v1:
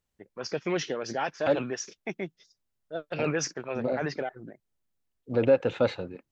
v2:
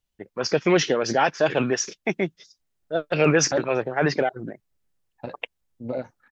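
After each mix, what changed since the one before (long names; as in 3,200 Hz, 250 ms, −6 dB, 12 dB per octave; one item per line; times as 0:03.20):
first voice +10.0 dB
second voice: entry +2.05 s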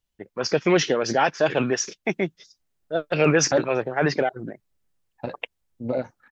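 second voice +3.5 dB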